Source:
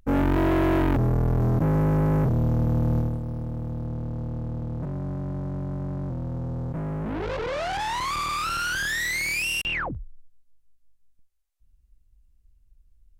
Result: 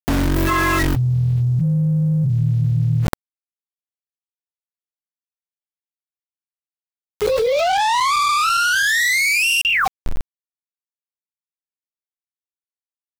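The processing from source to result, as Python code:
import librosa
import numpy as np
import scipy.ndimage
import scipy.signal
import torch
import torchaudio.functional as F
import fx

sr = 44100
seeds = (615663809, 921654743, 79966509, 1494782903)

y = fx.low_shelf(x, sr, hz=400.0, db=6.5)
y = fx.noise_reduce_blind(y, sr, reduce_db=26)
y = np.where(np.abs(y) >= 10.0 ** (-43.0 / 20.0), y, 0.0)
y = fx.env_flatten(y, sr, amount_pct=100)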